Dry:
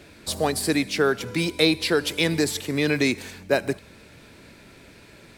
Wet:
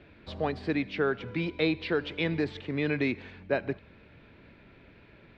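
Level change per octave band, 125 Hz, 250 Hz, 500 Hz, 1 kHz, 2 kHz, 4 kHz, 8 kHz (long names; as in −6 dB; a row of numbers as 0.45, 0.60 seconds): −5.0 dB, −6.0 dB, −6.5 dB, −7.0 dB, −7.0 dB, −13.5 dB, below −35 dB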